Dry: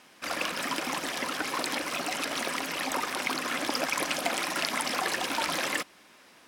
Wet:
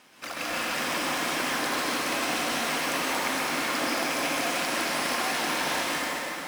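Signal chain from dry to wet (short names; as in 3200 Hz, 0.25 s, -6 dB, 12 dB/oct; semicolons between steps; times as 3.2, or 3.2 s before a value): compressor, threshold -32 dBFS, peak gain reduction 8.5 dB; plate-style reverb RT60 4.2 s, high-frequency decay 0.75×, pre-delay 0.115 s, DRR -8.5 dB; modulation noise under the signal 17 dB; gain -1 dB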